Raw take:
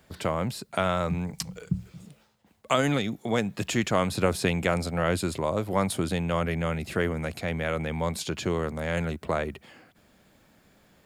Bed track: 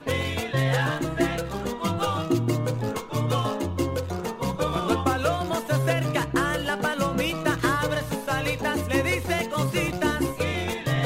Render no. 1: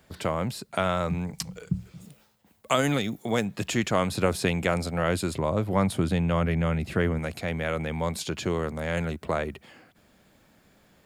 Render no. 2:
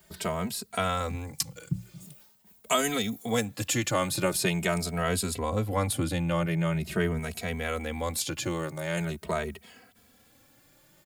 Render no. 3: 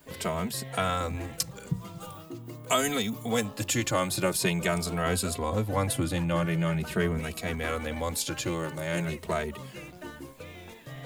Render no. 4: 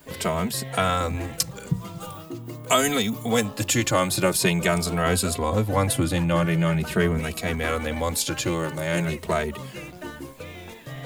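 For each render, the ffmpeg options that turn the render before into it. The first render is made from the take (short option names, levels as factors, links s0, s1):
-filter_complex "[0:a]asettb=1/sr,asplit=3[s0][s1][s2];[s0]atrim=end=2.014[s3];[s1]atrim=start=2.01:end=3.45,asetpts=PTS-STARTPTS,afade=t=in:d=0.004:c=qsin,afade=t=out:st=1.436:d=0.004:c=qsin,highshelf=f=11000:g=12[s4];[s2]atrim=start=3.446[s5];[s3][s4]acrossfade=d=0.004:c1=hsin:c2=qsin[s6];[s6][s5]acrossfade=d=0.004:c1=qsin:c2=hsin,asettb=1/sr,asplit=3[s7][s8][s9];[s7]atrim=end=5.354[s10];[s8]atrim=start=5.35:end=7.19,asetpts=PTS-STARTPTS,afade=t=in:d=0.004:c=qsin,afade=t=out:st=1.836:d=0.004:c=qsin,bass=f=250:g=5,treble=f=4000:g=-5[s11];[s9]atrim=start=7.186[s12];[s10][s11]acrossfade=d=0.004:c1=hsin:c2=qsin[s13];[s13][s12]acrossfade=d=0.004:c1=qsin:c2=hsin"
-filter_complex "[0:a]crystalizer=i=2:c=0,asplit=2[s0][s1];[s1]adelay=2.8,afreqshift=0.44[s2];[s0][s2]amix=inputs=2:normalize=1"
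-filter_complex "[1:a]volume=0.126[s0];[0:a][s0]amix=inputs=2:normalize=0"
-af "volume=1.88"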